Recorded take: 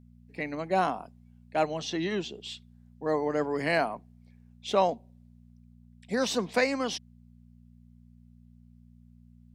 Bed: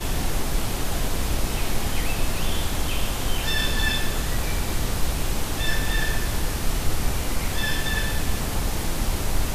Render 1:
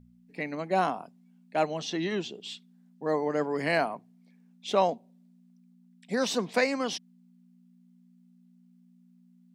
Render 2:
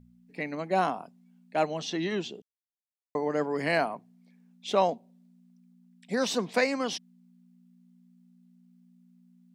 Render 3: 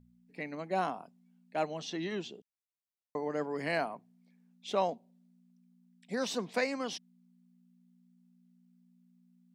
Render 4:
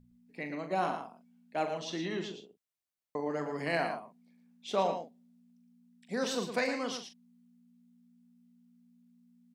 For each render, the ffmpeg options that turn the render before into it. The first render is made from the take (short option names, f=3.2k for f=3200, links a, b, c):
-af "bandreject=f=60:t=h:w=4,bandreject=f=120:t=h:w=4"
-filter_complex "[0:a]asplit=3[a][b][c];[a]atrim=end=2.42,asetpts=PTS-STARTPTS,afade=t=out:st=2.416:d=0.004:c=hsin[d];[b]atrim=start=2.42:end=3.15,asetpts=PTS-STARTPTS,volume=0[e];[c]atrim=start=3.15,asetpts=PTS-STARTPTS,afade=t=in:d=0.004:c=hsin[f];[d][e][f]concat=n=3:v=0:a=1"
-af "volume=-6dB"
-filter_complex "[0:a]asplit=2[a][b];[b]adelay=41,volume=-8.5dB[c];[a][c]amix=inputs=2:normalize=0,aecho=1:1:113:0.398"